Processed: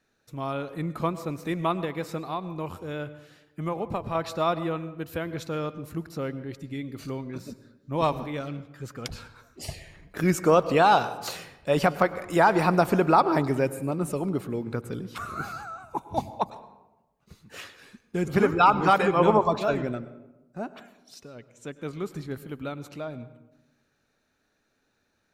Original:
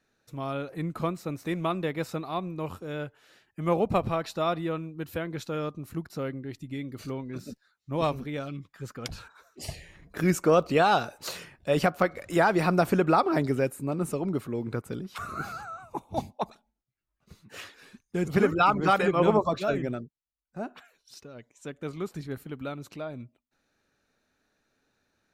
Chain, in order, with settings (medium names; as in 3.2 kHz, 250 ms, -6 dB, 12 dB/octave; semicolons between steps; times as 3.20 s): dynamic bell 940 Hz, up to +6 dB, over -41 dBFS, Q 3.1; 1.84–4.15 s: compression 6:1, threshold -28 dBFS, peak gain reduction 10 dB; reverberation RT60 1.0 s, pre-delay 95 ms, DRR 14.5 dB; trim +1 dB